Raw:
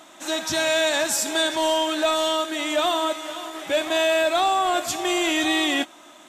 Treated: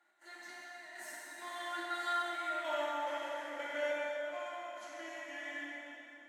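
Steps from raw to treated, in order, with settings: Doppler pass-by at 2.56, 32 m/s, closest 2.5 m; steep high-pass 190 Hz 48 dB/oct; bell 1800 Hz +14 dB 0.58 oct; compressor 8:1, threshold -36 dBFS, peak gain reduction 19 dB; small resonant body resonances 590/850/1400/2000 Hz, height 10 dB, ringing for 25 ms; step gate "x.xxx....xx..xxx" 142 bpm -12 dB; plate-style reverb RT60 3.2 s, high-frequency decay 0.75×, DRR -6.5 dB; gain -6 dB

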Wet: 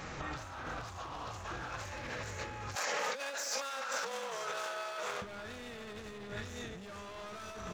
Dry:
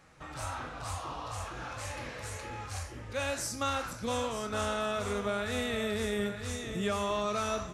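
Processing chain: downsampling 16000 Hz; overloaded stage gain 36 dB; echo with dull and thin repeats by turns 0.139 s, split 2300 Hz, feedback 80%, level -12 dB; dynamic EQ 1600 Hz, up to +3 dB, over -54 dBFS, Q 4.4; 2.75–5.22 steep high-pass 440 Hz 96 dB/oct; limiter -39 dBFS, peak gain reduction 11 dB; negative-ratio compressor -50 dBFS, ratio -0.5; AM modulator 280 Hz, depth 30%; gain +12.5 dB

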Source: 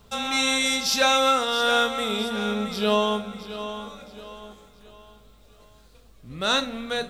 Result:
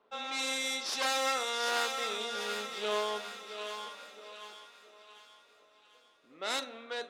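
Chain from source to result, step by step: one-sided fold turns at -23 dBFS; HPF 320 Hz 24 dB/oct; crackle 570/s -57 dBFS; low-pass opened by the level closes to 1900 Hz, open at -19 dBFS; thin delay 0.747 s, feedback 44%, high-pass 1400 Hz, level -5 dB; gain -9 dB

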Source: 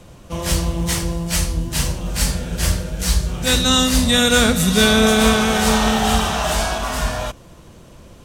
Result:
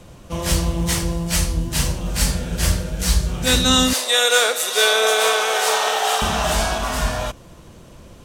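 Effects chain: 3.93–6.22 steep high-pass 410 Hz 36 dB/oct

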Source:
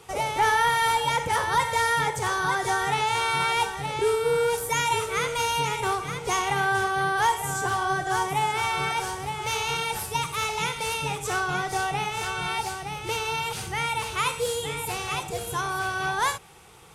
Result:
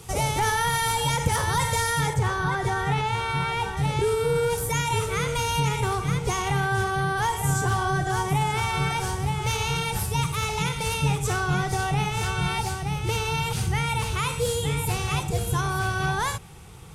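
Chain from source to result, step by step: limiter -17.5 dBFS, peak gain reduction 4 dB; tone controls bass +14 dB, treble +9 dB, from 2.13 s treble -6 dB, from 3.76 s treble +2 dB

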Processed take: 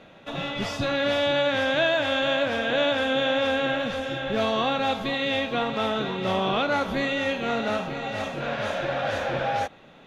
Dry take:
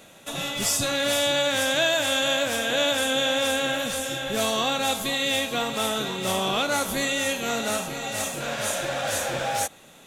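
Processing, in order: air absorption 290 m; gain +2.5 dB

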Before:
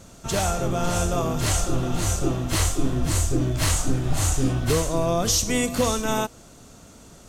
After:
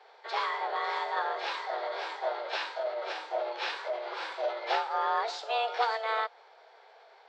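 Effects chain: mistuned SSB +230 Hz 220–3500 Hz; formant shift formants +3 st; gain -5 dB

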